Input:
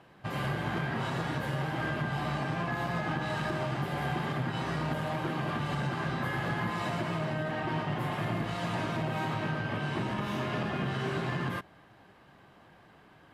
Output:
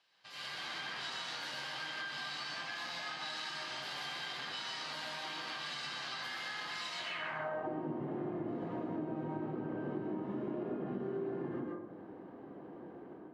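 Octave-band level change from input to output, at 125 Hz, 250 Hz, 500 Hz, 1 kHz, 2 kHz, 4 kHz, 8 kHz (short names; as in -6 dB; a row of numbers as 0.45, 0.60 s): -17.0, -6.5, -6.0, -9.5, -6.0, +2.0, 0.0 dB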